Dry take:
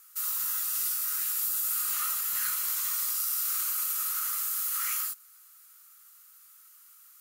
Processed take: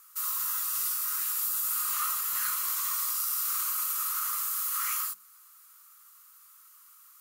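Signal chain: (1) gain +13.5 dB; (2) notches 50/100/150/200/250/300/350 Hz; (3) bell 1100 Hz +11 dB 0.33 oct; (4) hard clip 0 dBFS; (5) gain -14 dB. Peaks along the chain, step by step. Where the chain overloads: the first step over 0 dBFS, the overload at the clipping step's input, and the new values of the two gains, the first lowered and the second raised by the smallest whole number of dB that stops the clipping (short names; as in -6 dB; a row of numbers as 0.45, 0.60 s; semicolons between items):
-3.0, -3.0, -3.0, -3.0, -17.0 dBFS; no overload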